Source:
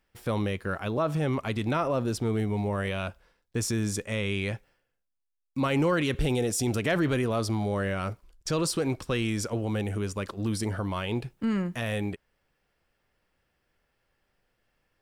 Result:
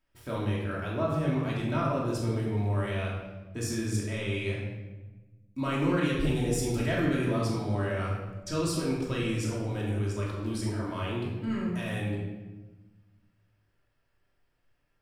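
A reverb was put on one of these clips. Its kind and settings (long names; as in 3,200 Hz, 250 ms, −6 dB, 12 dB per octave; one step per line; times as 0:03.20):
rectangular room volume 760 cubic metres, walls mixed, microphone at 2.8 metres
level −9 dB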